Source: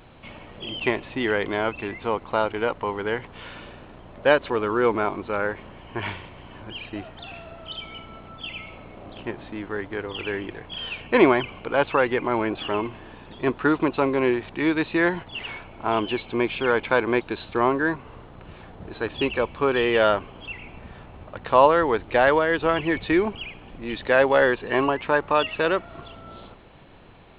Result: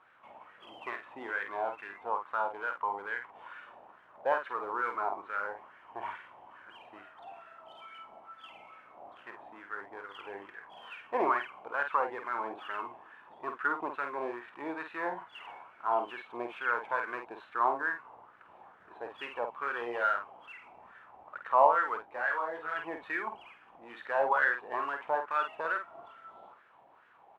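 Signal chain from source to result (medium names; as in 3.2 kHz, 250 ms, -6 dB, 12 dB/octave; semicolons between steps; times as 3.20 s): CVSD coder 64 kbps; wah-wah 2.3 Hz 760–1600 Hz, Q 4.3; doubling 50 ms -7 dB; 22.02–22.74 s: detune thickener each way 12 cents -> 30 cents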